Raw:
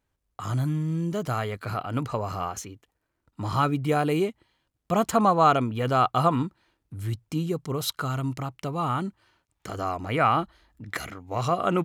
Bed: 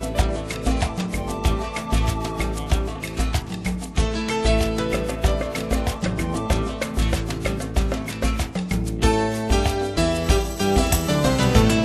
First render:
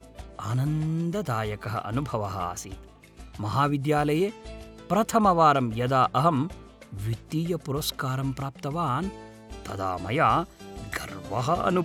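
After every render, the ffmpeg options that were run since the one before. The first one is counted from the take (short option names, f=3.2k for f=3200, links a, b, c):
-filter_complex "[1:a]volume=-22.5dB[a];[0:a][a]amix=inputs=2:normalize=0"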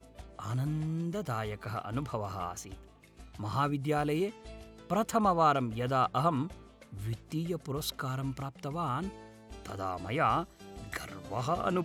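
-af "volume=-6.5dB"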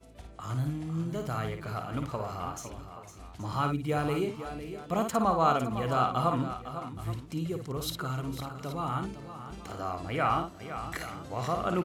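-af "aecho=1:1:55|506|556|826:0.473|0.282|0.106|0.15"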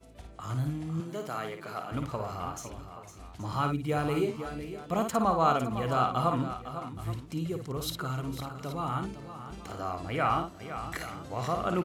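-filter_complex "[0:a]asettb=1/sr,asplit=3[a][b][c];[a]atrim=end=1.004[d];[b]atrim=start=1:end=1.92,asetpts=PTS-STARTPTS,afade=t=in:d=0.004:c=qsin,afade=t=out:st=0.916:d=0.004:c=qsin,highpass=250[e];[c]atrim=start=1.916[f];[d][e]acrossfade=d=0.004:c1=hsin:c2=qsin[g];[g][f]acrossfade=d=0.004:c1=qsin:c2=hsin,asettb=1/sr,asplit=3[h][i][j];[h]atrim=end=4.154[k];[i]atrim=start=4.15:end=4.65,asetpts=PTS-STARTPTS,afade=t=in:d=0.004:c=qsin,afade=t=out:st=0.496:d=0.004:c=qsin,asplit=2[l][m];[m]adelay=13,volume=-6dB[n];[l][n]amix=inputs=2:normalize=0,atrim=end_sample=22050[o];[j]atrim=start=4.646[p];[k][o]acrossfade=d=0.004:c1=hsin:c2=qsin[q];[q][p]acrossfade=d=0.004:c1=qsin:c2=hsin"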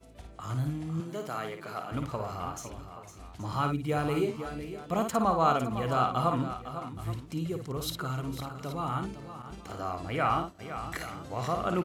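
-filter_complex "[0:a]asettb=1/sr,asplit=3[a][b][c];[a]atrim=end=9.424[d];[b]atrim=start=9.42:end=10.59,asetpts=PTS-STARTPTS,afade=t=in:d=0.004:c=qsin,afade=t=out:st=1.166:d=0.004:c=qsin,agate=range=-33dB:threshold=-42dB:ratio=3:release=100:detection=peak[e];[c]atrim=start=10.586[f];[d][e]acrossfade=d=0.004:c1=hsin:c2=qsin[g];[g][f]acrossfade=d=0.004:c1=qsin:c2=hsin"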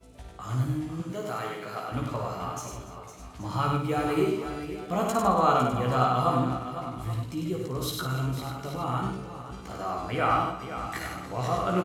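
-filter_complex "[0:a]asplit=2[a][b];[b]adelay=16,volume=-4dB[c];[a][c]amix=inputs=2:normalize=0,aecho=1:1:98|220|287:0.668|0.112|0.15"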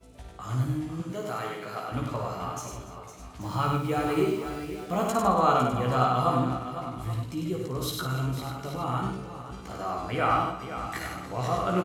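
-filter_complex "[0:a]asettb=1/sr,asplit=3[a][b][c];[a]atrim=end=3.414[d];[b]atrim=start=3.41:end=5.09,asetpts=PTS-STARTPTS,afade=t=in:d=0.004:c=qsin,afade=t=out:st=1.676:d=0.004:c=qsin,acrusher=bits=7:mix=0:aa=0.5[e];[c]atrim=start=5.086[f];[d][e]acrossfade=d=0.004:c1=hsin:c2=qsin[g];[g][f]acrossfade=d=0.004:c1=qsin:c2=hsin"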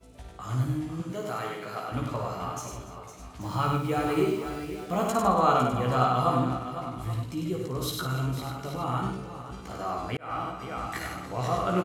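-filter_complex "[0:a]asplit=2[a][b];[a]atrim=end=10.17,asetpts=PTS-STARTPTS,afade=t=out:st=10.166:d=0.004:c=hsin[c];[b]atrim=start=10.17,asetpts=PTS-STARTPTS,afade=t=in:d=0.48[d];[c][d]concat=n=2:v=0:a=1"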